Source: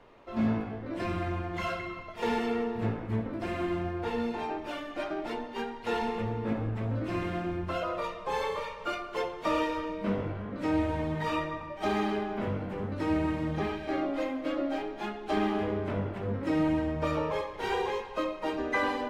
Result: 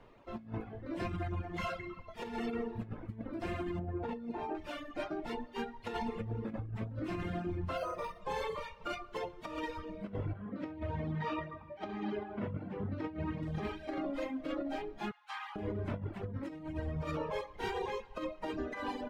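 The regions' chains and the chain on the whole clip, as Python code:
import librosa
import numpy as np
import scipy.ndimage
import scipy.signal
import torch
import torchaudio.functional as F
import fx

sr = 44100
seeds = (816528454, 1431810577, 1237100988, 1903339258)

y = fx.chain(x, sr, fx.highpass(hz=360.0, slope=6),
    fx.tilt_eq(slope=-4.0), at=(3.79, 4.55))
y = fx.chain(y, sr, fx.doubler(ms=36.0, db=-8.5),
    fx.resample_linear(factor=6), at=(7.77, 8.21))
y = fx.chain(y, sr, fx.highpass(hz=78.0, slope=12),
    fx.air_absorb(metres=170.0), at=(10.33, 13.43))
y = fx.chain(y, sr, fx.cheby1_highpass(hz=880.0, order=5),
    fx.high_shelf(hz=5700.0, db=-6.0), at=(15.11, 15.56))
y = fx.dereverb_blind(y, sr, rt60_s=1.0)
y = fx.bass_treble(y, sr, bass_db=6, treble_db=0)
y = fx.over_compress(y, sr, threshold_db=-31.0, ratio=-0.5)
y = y * librosa.db_to_amplitude(-5.5)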